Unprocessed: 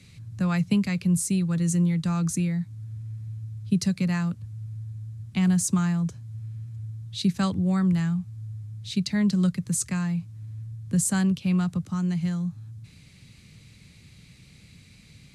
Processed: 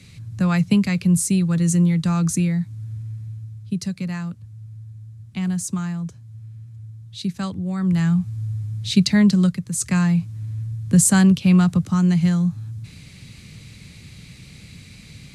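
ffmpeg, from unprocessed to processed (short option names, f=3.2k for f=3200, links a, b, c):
-af "volume=27.5dB,afade=t=out:st=2.94:d=0.77:silence=0.421697,afade=t=in:st=7.77:d=0.5:silence=0.251189,afade=t=out:st=9.04:d=0.68:silence=0.281838,afade=t=in:st=9.72:d=0.25:silence=0.316228"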